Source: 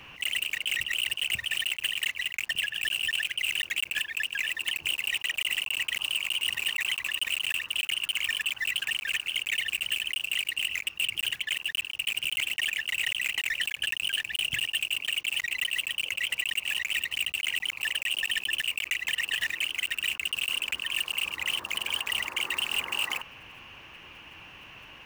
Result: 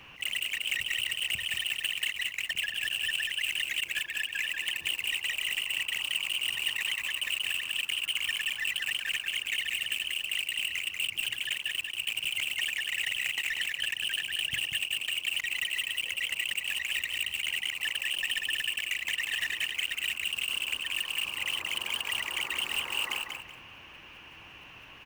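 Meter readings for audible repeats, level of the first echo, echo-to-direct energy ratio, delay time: 2, -5.0 dB, -4.5 dB, 0.188 s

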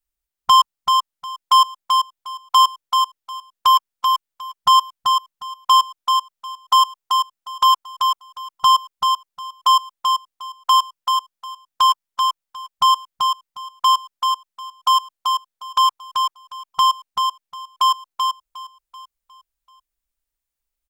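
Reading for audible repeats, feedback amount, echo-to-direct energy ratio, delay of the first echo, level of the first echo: 4, no steady repeat, -4.5 dB, 0.385 s, -4.5 dB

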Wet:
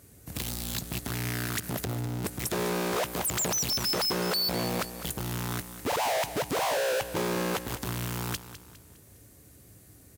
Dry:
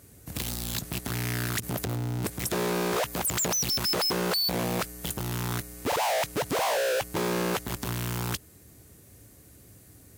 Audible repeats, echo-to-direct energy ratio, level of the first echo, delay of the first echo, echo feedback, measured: 3, -12.0 dB, -13.0 dB, 0.204 s, 40%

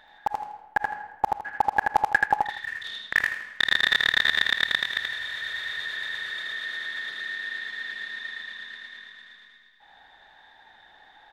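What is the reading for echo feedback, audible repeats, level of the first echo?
28%, 3, -3.0 dB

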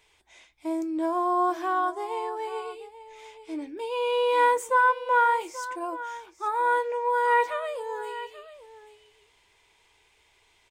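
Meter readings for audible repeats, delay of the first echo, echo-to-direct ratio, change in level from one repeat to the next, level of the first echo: 1, 0.834 s, -15.0 dB, no steady repeat, -15.0 dB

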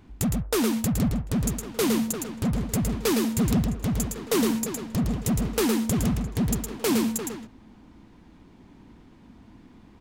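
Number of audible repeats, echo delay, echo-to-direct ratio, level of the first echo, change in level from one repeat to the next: 1, 0.112 s, -4.5 dB, -4.5 dB, no steady repeat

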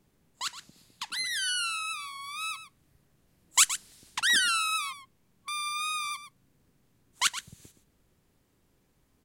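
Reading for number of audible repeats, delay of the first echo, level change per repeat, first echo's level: 1, 0.12 s, no steady repeat, -12.0 dB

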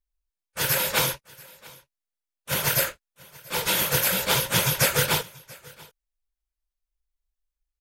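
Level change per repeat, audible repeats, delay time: no steady repeat, 1, 0.684 s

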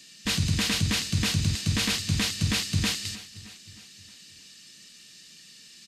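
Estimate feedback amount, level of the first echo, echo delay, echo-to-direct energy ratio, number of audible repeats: 57%, -18.0 dB, 0.312 s, -16.5 dB, 4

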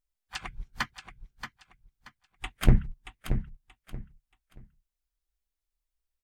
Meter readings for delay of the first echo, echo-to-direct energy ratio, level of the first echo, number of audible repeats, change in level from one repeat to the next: 0.629 s, -8.5 dB, -9.0 dB, 3, -11.5 dB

